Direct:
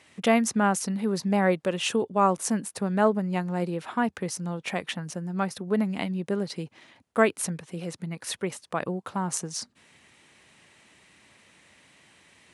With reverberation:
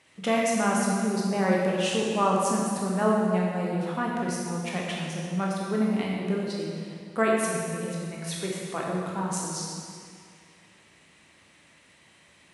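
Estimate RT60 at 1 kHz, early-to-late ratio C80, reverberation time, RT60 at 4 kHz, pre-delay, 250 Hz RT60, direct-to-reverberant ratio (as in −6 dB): 2.2 s, 0.5 dB, 2.2 s, 1.9 s, 14 ms, 2.2 s, −3.5 dB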